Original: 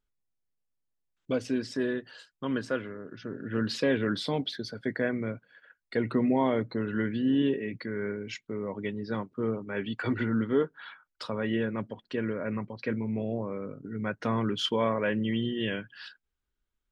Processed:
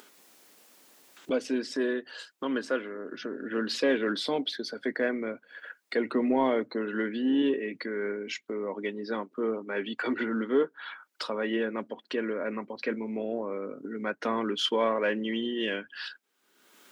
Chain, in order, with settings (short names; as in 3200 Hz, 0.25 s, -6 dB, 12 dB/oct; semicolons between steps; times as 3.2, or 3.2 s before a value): HPF 250 Hz 24 dB/oct; upward compressor, threshold -33 dBFS; in parallel at -10 dB: soft clip -25 dBFS, distortion -13 dB